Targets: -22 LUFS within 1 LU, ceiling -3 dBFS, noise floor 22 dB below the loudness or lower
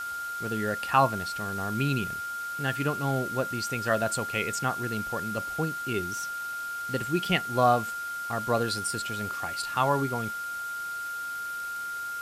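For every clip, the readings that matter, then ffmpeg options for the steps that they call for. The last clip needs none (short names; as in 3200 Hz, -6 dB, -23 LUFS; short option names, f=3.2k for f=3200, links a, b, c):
steady tone 1400 Hz; tone level -32 dBFS; noise floor -35 dBFS; noise floor target -51 dBFS; loudness -29.0 LUFS; peak -9.0 dBFS; loudness target -22.0 LUFS
-> -af "bandreject=f=1.4k:w=30"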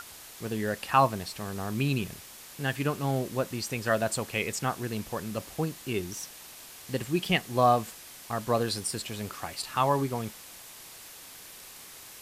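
steady tone none; noise floor -48 dBFS; noise floor target -52 dBFS
-> -af "afftdn=nr=6:nf=-48"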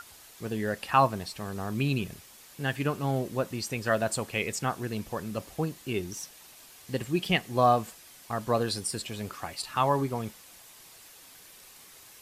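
noise floor -52 dBFS; loudness -30.0 LUFS; peak -9.0 dBFS; loudness target -22.0 LUFS
-> -af "volume=8dB,alimiter=limit=-3dB:level=0:latency=1"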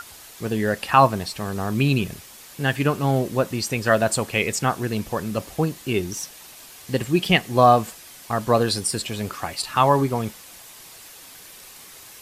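loudness -22.0 LUFS; peak -3.0 dBFS; noise floor -44 dBFS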